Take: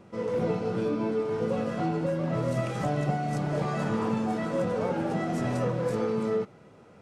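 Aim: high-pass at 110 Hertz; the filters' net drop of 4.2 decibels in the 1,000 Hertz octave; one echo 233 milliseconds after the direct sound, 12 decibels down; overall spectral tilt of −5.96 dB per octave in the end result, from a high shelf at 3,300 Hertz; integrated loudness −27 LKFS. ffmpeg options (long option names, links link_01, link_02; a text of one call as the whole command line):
ffmpeg -i in.wav -af "highpass=110,equalizer=frequency=1000:width_type=o:gain=-7,highshelf=frequency=3300:gain=6.5,aecho=1:1:233:0.251,volume=2.5dB" out.wav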